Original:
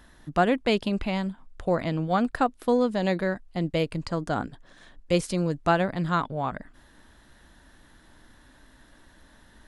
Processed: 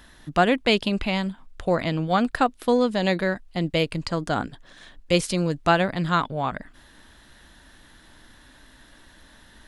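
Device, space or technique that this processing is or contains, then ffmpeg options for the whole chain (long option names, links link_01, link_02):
presence and air boost: -af "equalizer=frequency=3200:width_type=o:width=1.8:gain=5.5,highshelf=frequency=9200:gain=5,volume=2dB"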